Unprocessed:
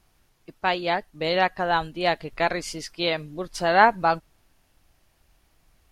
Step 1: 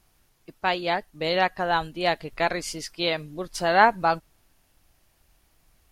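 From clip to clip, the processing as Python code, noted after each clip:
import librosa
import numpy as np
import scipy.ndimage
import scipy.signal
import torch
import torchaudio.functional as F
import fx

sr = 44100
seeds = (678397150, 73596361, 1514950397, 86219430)

y = fx.high_shelf(x, sr, hz=7600.0, db=6.0)
y = y * 10.0 ** (-1.0 / 20.0)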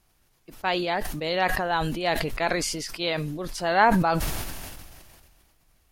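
y = fx.sustainer(x, sr, db_per_s=29.0)
y = y * 10.0 ** (-2.5 / 20.0)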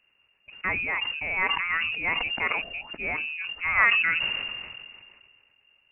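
y = fx.freq_invert(x, sr, carrier_hz=2800)
y = y * 10.0 ** (-2.0 / 20.0)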